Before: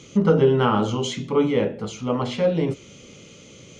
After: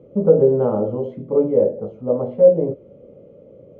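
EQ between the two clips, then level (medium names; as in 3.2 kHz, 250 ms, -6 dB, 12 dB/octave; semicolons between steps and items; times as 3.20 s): resonant low-pass 560 Hz, resonance Q 4.9; -3.5 dB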